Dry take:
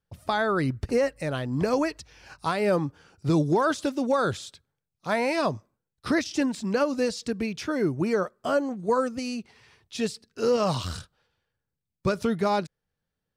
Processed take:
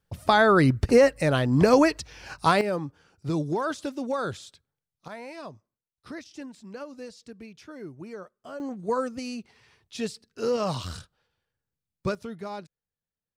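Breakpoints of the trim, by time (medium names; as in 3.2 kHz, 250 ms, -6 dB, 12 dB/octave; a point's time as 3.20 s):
+6.5 dB
from 2.61 s -5 dB
from 5.08 s -15 dB
from 8.60 s -3 dB
from 12.15 s -12 dB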